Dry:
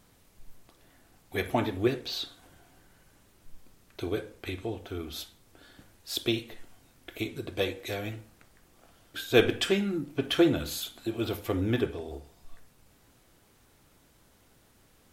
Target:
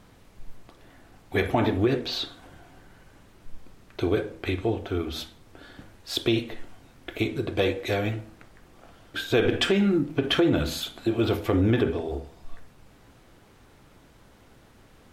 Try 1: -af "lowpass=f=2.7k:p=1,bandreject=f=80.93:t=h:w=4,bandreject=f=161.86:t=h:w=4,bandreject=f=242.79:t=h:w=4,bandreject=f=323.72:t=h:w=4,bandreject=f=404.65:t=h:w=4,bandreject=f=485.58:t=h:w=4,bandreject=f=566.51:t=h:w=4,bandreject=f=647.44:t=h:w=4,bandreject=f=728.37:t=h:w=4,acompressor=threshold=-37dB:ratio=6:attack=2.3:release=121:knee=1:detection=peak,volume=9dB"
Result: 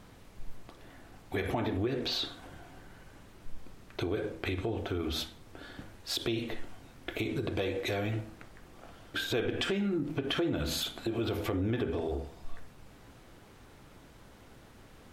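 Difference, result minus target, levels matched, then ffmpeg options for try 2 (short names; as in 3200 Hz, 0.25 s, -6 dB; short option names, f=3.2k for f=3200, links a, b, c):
compressor: peak gain reduction +9.5 dB
-af "lowpass=f=2.7k:p=1,bandreject=f=80.93:t=h:w=4,bandreject=f=161.86:t=h:w=4,bandreject=f=242.79:t=h:w=4,bandreject=f=323.72:t=h:w=4,bandreject=f=404.65:t=h:w=4,bandreject=f=485.58:t=h:w=4,bandreject=f=566.51:t=h:w=4,bandreject=f=647.44:t=h:w=4,bandreject=f=728.37:t=h:w=4,acompressor=threshold=-25.5dB:ratio=6:attack=2.3:release=121:knee=1:detection=peak,volume=9dB"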